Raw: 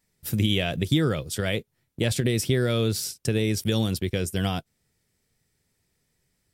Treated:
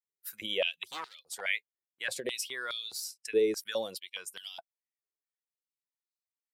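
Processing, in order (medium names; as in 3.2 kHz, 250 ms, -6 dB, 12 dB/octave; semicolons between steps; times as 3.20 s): expander on every frequency bin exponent 1.5; 0.84–1.41 s: overload inside the chain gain 25 dB; step-sequenced high-pass 4.8 Hz 400–4000 Hz; trim -5.5 dB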